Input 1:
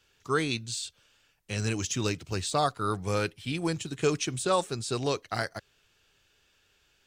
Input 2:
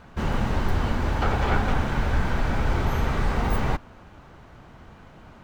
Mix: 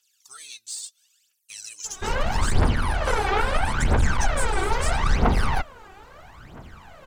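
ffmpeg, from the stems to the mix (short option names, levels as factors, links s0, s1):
-filter_complex "[0:a]aemphasis=mode=production:type=75kf,acompressor=threshold=0.0447:ratio=6,bandpass=f=7900:t=q:w=0.65:csg=0,volume=0.501[s0];[1:a]aeval=exprs='clip(val(0),-1,0.0841)':c=same,lowpass=5700,lowshelf=f=310:g=-8,adelay=1850,volume=1.26[s1];[s0][s1]amix=inputs=2:normalize=0,aphaser=in_gain=1:out_gain=1:delay=2.7:decay=0.73:speed=0.76:type=triangular"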